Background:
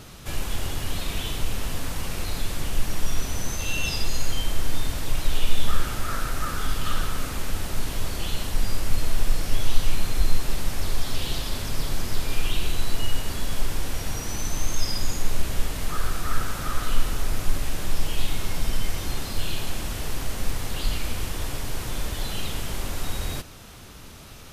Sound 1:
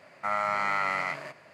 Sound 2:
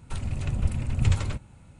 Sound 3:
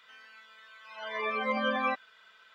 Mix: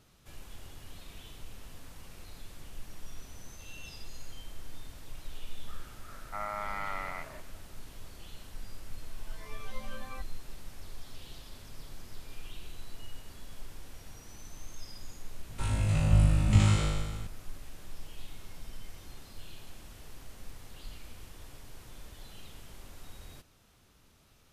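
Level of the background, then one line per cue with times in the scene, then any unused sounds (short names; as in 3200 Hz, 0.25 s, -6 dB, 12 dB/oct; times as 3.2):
background -19.5 dB
6.09 add 1 -7 dB + high shelf 2400 Hz -9.5 dB
8.27 add 3 -17.5 dB
15.48 add 2 -3.5 dB + flutter echo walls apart 3.3 m, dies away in 1.4 s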